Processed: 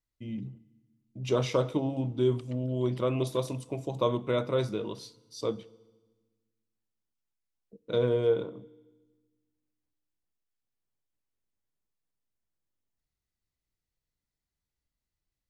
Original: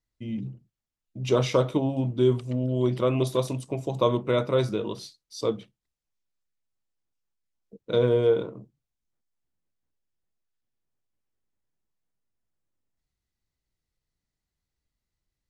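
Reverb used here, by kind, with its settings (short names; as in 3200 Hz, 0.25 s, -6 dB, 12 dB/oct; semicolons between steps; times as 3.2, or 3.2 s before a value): FDN reverb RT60 1.3 s, low-frequency decay 1.45×, high-frequency decay 1×, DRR 19.5 dB; gain -4.5 dB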